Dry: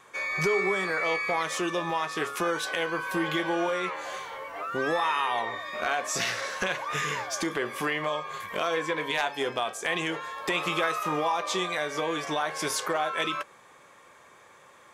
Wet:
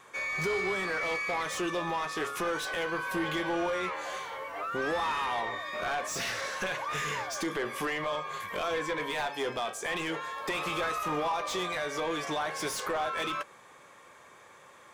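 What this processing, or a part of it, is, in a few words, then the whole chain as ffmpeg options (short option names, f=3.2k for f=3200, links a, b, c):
saturation between pre-emphasis and de-emphasis: -af "highshelf=f=2.2k:g=10.5,asoftclip=type=tanh:threshold=-23.5dB,highshelf=f=2.2k:g=-10.5"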